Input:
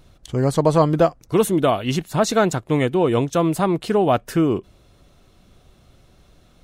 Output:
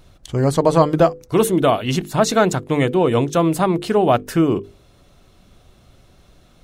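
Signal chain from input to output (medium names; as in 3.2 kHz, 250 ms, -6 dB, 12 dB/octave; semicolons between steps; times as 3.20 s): hum notches 50/100/150/200/250/300/350/400/450/500 Hz; trim +2.5 dB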